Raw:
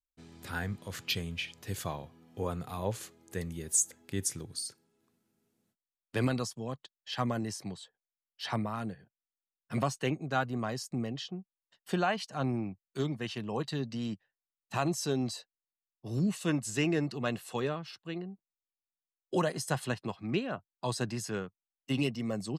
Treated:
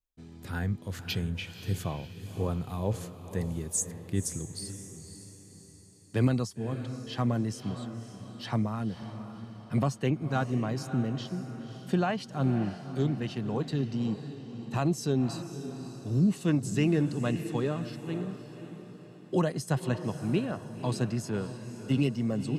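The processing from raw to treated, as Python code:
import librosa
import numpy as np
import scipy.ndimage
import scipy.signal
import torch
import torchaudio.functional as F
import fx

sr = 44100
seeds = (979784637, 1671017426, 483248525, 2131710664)

p1 = fx.low_shelf(x, sr, hz=400.0, db=10.5)
p2 = p1 + fx.echo_diffused(p1, sr, ms=544, feedback_pct=47, wet_db=-10.5, dry=0)
y = p2 * 10.0 ** (-3.0 / 20.0)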